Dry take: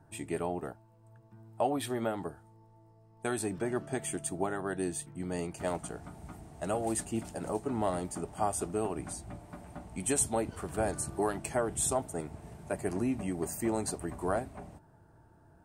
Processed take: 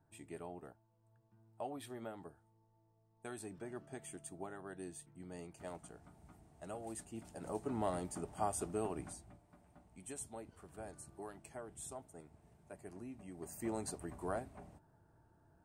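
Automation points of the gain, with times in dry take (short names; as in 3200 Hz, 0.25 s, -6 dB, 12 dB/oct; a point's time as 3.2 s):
7.15 s -14 dB
7.64 s -6 dB
9.01 s -6 dB
9.41 s -18 dB
13.23 s -18 dB
13.68 s -8.5 dB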